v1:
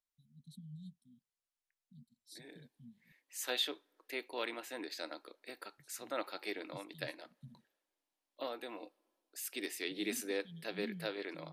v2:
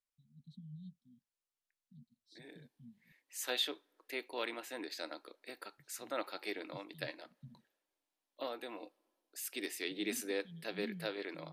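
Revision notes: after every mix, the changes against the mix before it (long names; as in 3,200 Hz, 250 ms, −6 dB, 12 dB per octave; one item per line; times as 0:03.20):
first voice: add high-frequency loss of the air 180 metres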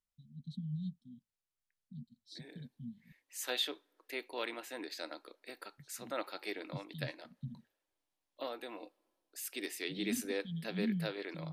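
first voice +10.5 dB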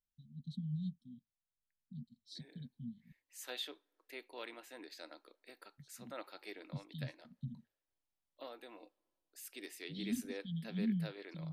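second voice −8.0 dB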